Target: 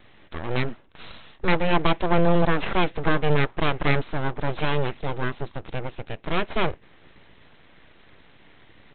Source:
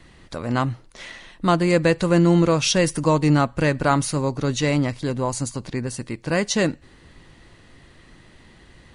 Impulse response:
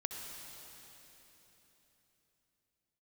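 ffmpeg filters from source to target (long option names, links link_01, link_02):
-af "highpass=frequency=42:poles=1,equalizer=frequency=120:width=5.4:gain=-4,aresample=8000,aeval=exprs='abs(val(0))':channel_layout=same,aresample=44100"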